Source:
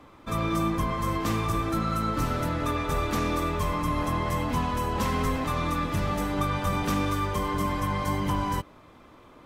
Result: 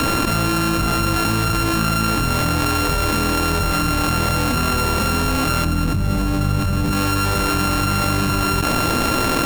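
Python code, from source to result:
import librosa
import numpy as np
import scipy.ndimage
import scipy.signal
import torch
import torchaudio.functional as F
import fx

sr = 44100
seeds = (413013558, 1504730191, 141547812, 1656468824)

y = np.r_[np.sort(x[:len(x) // 32 * 32].reshape(-1, 32), axis=1).ravel(), x[len(x) // 32 * 32:]]
y = fx.low_shelf(y, sr, hz=360.0, db=12.0, at=(5.65, 6.92))
y = fx.env_flatten(y, sr, amount_pct=100)
y = y * 10.0 ** (-4.5 / 20.0)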